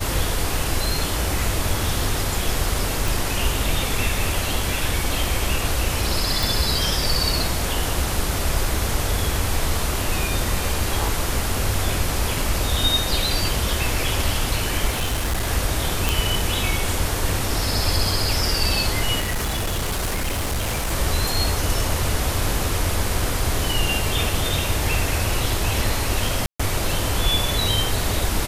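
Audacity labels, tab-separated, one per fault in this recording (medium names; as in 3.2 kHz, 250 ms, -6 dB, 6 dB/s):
3.080000	3.080000	pop
6.430000	6.430000	pop
14.900000	15.480000	clipped -18.5 dBFS
16.090000	16.090000	pop
19.190000	20.930000	clipped -20 dBFS
26.460000	26.590000	dropout 135 ms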